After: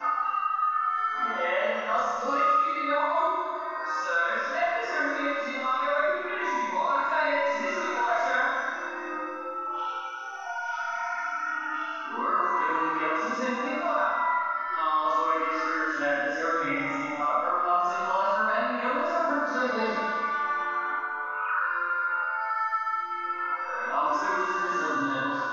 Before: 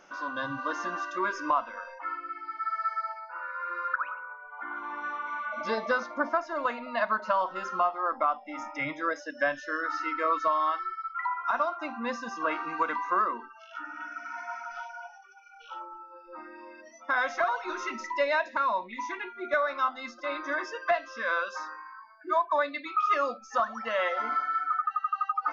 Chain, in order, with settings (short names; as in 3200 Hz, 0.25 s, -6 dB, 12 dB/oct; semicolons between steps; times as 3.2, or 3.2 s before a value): whole clip reversed; Schroeder reverb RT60 1.5 s, combs from 25 ms, DRR -9 dB; three-band squash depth 70%; gain -6.5 dB